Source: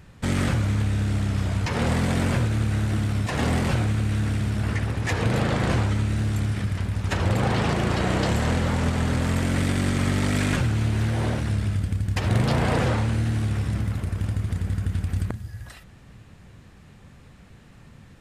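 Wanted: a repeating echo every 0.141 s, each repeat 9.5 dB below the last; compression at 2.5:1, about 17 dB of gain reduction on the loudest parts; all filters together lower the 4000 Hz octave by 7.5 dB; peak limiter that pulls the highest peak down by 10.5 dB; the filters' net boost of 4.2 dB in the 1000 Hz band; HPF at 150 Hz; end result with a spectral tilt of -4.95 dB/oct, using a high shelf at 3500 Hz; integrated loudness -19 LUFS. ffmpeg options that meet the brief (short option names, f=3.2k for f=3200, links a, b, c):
-af "highpass=150,equalizer=f=1k:t=o:g=6.5,highshelf=f=3.5k:g=-8.5,equalizer=f=4k:t=o:g=-5,acompressor=threshold=-47dB:ratio=2.5,alimiter=level_in=11dB:limit=-24dB:level=0:latency=1,volume=-11dB,aecho=1:1:141|282|423|564:0.335|0.111|0.0365|0.012,volume=25.5dB"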